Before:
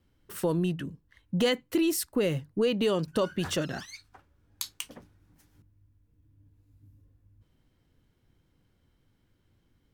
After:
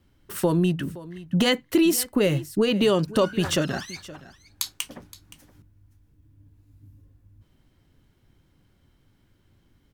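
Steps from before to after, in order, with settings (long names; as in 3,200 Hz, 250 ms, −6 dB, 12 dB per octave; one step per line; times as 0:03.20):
notch filter 480 Hz, Q 12
single-tap delay 520 ms −18 dB
level +6.5 dB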